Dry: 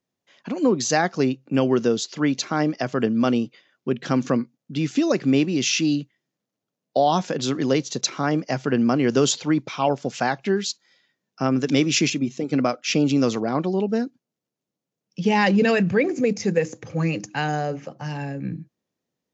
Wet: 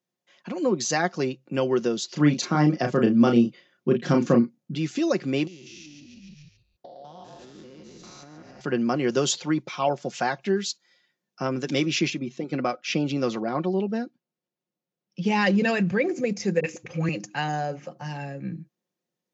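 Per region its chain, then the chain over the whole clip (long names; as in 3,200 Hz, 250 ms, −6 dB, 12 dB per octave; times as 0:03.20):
0:02.07–0:04.75: low-shelf EQ 390 Hz +10 dB + double-tracking delay 34 ms −5.5 dB
0:05.47–0:08.61: spectrum averaged block by block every 200 ms + echo with shifted repeats 141 ms, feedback 42%, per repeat −47 Hz, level −5 dB + downward compressor 12 to 1, threshold −38 dBFS
0:11.85–0:15.25: low-pass filter 4,700 Hz + de-essing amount 35%
0:16.60–0:17.09: parametric band 2,500 Hz +10.5 dB 0.6 octaves + all-pass dispersion highs, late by 40 ms, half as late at 360 Hz
whole clip: low-shelf EQ 81 Hz −11.5 dB; comb filter 5.6 ms, depth 45%; level −3.5 dB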